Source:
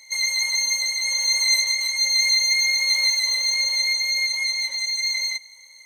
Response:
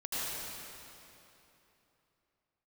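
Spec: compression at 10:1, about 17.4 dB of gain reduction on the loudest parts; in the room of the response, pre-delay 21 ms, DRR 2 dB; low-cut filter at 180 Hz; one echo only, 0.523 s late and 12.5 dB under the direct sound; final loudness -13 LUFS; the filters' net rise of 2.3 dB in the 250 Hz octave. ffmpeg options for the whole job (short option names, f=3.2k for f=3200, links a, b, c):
-filter_complex "[0:a]highpass=180,equalizer=f=250:t=o:g=3.5,acompressor=threshold=-34dB:ratio=10,aecho=1:1:523:0.237,asplit=2[a][b];[1:a]atrim=start_sample=2205,adelay=21[c];[b][c]afir=irnorm=-1:irlink=0,volume=-8dB[d];[a][d]amix=inputs=2:normalize=0,volume=18.5dB"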